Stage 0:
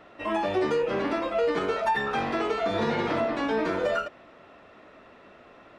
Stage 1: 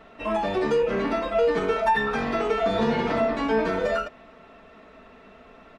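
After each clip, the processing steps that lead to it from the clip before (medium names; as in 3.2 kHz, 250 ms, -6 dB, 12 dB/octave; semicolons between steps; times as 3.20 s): bass shelf 110 Hz +10.5 dB; comb 4.5 ms, depth 56%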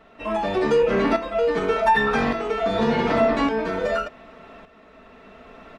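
tremolo saw up 0.86 Hz, depth 65%; trim +6 dB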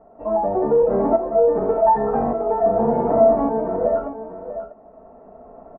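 four-pole ladder low-pass 870 Hz, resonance 50%; delay 643 ms -11 dB; trim +8.5 dB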